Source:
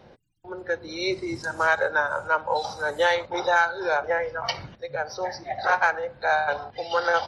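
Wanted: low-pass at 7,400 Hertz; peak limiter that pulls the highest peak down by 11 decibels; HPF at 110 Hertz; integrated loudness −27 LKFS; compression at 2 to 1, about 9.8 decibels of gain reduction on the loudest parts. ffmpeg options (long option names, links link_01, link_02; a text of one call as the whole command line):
ffmpeg -i in.wav -af "highpass=110,lowpass=7400,acompressor=threshold=-35dB:ratio=2,volume=11dB,alimiter=limit=-17.5dB:level=0:latency=1" out.wav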